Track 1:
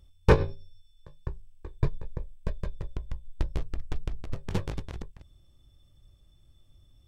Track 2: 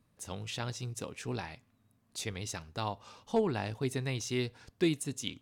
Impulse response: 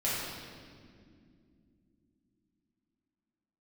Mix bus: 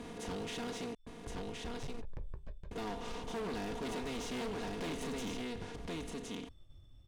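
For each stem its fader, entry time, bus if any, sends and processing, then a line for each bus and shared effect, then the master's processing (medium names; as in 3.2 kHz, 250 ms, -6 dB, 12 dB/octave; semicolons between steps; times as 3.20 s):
+2.5 dB, 0.00 s, no send, echo send -10 dB, expander -53 dBFS; compression 12:1, threshold -30 dBFS, peak gain reduction 18.5 dB; auto duck -12 dB, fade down 0.40 s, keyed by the second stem
-4.5 dB, 0.00 s, muted 0.95–2.71 s, no send, echo send -4.5 dB, spectral levelling over time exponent 0.4; comb 4.2 ms, depth 72%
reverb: none
echo: delay 1069 ms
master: treble shelf 6.7 kHz -11.5 dB; overload inside the chain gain 33 dB; peak limiter -36.5 dBFS, peak gain reduction 3.5 dB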